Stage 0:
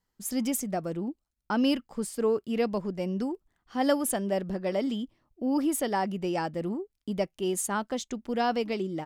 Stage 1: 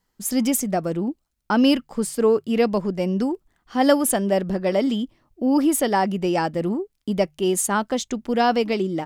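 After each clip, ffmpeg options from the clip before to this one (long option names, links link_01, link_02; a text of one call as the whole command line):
ffmpeg -i in.wav -af "bandreject=frequency=50:width_type=h:width=6,bandreject=frequency=100:width_type=h:width=6,bandreject=frequency=150:width_type=h:width=6,volume=8dB" out.wav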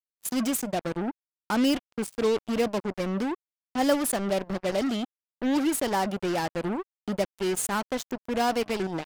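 ffmpeg -i in.wav -af "acrusher=bits=3:mix=0:aa=0.5,volume=-6.5dB" out.wav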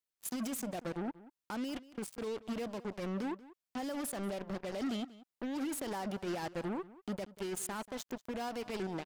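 ffmpeg -i in.wav -filter_complex "[0:a]acompressor=threshold=-31dB:ratio=6,alimiter=level_in=10dB:limit=-24dB:level=0:latency=1:release=58,volume=-10dB,asplit=2[link_01][link_02];[link_02]adelay=186.6,volume=-18dB,highshelf=frequency=4000:gain=-4.2[link_03];[link_01][link_03]amix=inputs=2:normalize=0,volume=2.5dB" out.wav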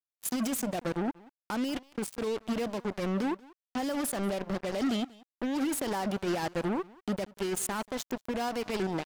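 ffmpeg -i in.wav -af "aeval=exprs='sgn(val(0))*max(abs(val(0))-0.00141,0)':channel_layout=same,volume=7.5dB" out.wav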